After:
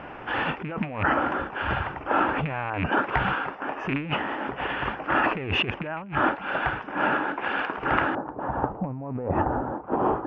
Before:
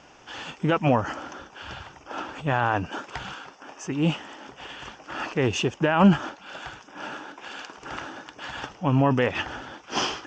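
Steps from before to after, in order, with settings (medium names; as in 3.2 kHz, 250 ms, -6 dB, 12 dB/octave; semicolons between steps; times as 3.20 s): rattle on loud lows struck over -30 dBFS, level -15 dBFS; low-pass 2.3 kHz 24 dB/octave, from 8.15 s 1 kHz; compressor with a negative ratio -33 dBFS, ratio -1; trim +6.5 dB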